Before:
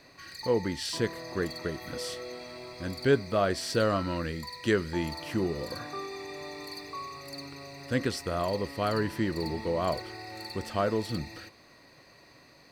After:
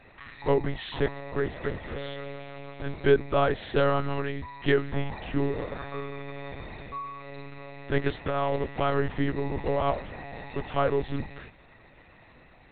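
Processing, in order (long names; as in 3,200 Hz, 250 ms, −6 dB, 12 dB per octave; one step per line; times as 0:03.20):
one-pitch LPC vocoder at 8 kHz 140 Hz
level +3 dB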